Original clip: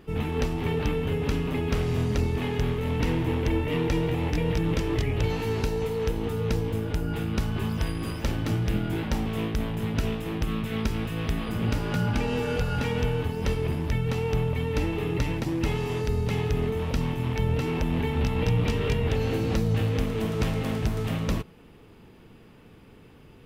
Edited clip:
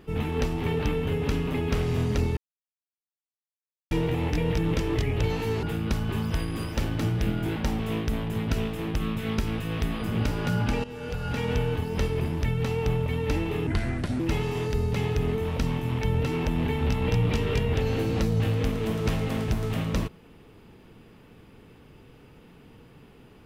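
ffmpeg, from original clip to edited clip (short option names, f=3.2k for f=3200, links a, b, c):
-filter_complex "[0:a]asplit=7[a][b][c][d][e][f][g];[a]atrim=end=2.37,asetpts=PTS-STARTPTS,afade=t=out:st=2.366:d=0.004:c=hsin[h];[b]atrim=start=2.37:end=3.91,asetpts=PTS-STARTPTS,volume=0[i];[c]atrim=start=3.91:end=5.632,asetpts=PTS-STARTPTS,afade=t=in:d=0.004:c=hsin[j];[d]atrim=start=7.098:end=12.31,asetpts=PTS-STARTPTS,afade=t=out:st=5.208:d=0.004:c=hsin:silence=0.158489[k];[e]atrim=start=12.31:end=15.144,asetpts=PTS-STARTPTS,afade=t=in:d=0.67:silence=0.158489[l];[f]atrim=start=15.14:end=15.54,asetpts=PTS-STARTPTS,asetrate=33516,aresample=44100[m];[g]atrim=start=15.536[n];[h][i][j]concat=n=3:v=0:a=1[o];[k][l]concat=n=2:v=0:a=1[p];[o][p]acrossfade=d=0.004:c1=hsin:c2=hsin[q];[q][m]acrossfade=d=0.004:c1=hsin:c2=hsin[r];[r][n]acrossfade=d=0.004:c1=hsin:c2=hsin"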